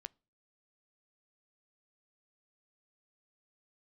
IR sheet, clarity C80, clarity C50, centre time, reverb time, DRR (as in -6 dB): 35.5 dB, 30.5 dB, 1 ms, 0.35 s, 18.0 dB